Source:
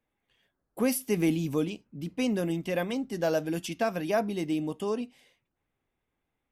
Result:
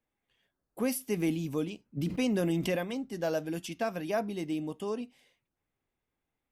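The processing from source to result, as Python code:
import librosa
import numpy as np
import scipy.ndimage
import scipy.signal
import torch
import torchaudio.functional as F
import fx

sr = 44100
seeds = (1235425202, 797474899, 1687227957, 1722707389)

y = fx.env_flatten(x, sr, amount_pct=70, at=(1.96, 2.75), fade=0.02)
y = F.gain(torch.from_numpy(y), -4.0).numpy()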